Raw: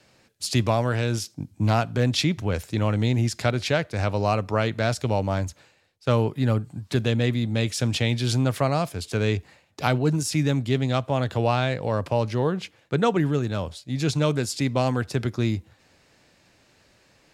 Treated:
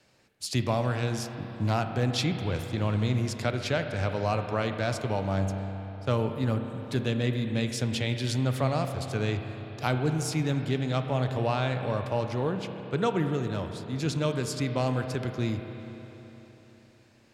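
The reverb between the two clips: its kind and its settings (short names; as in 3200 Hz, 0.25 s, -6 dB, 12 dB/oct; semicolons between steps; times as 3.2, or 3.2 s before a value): spring tank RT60 3.8 s, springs 31/57 ms, chirp 25 ms, DRR 6 dB; gain -5.5 dB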